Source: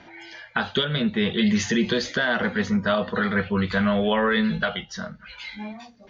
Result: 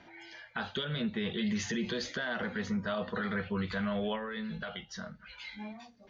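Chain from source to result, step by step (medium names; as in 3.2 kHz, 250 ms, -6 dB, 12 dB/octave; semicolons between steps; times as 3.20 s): peak limiter -17 dBFS, peak gain reduction 5.5 dB; 4.15–5.07 s: compression 3:1, threshold -29 dBFS, peak gain reduction 6 dB; trim -8 dB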